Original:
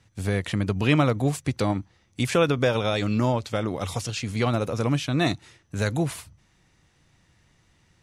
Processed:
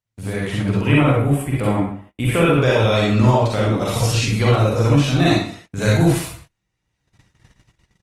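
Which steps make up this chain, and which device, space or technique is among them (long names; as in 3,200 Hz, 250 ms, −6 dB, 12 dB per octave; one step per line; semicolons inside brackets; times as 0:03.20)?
0:00.81–0:02.58: flat-topped bell 5,200 Hz −15.5 dB 1.1 octaves
speakerphone in a meeting room (convolution reverb RT60 0.55 s, pre-delay 40 ms, DRR −5 dB; far-end echo of a speakerphone 130 ms, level −27 dB; automatic gain control gain up to 12 dB; noise gate −39 dBFS, range −26 dB; level −2 dB; Opus 24 kbit/s 48,000 Hz)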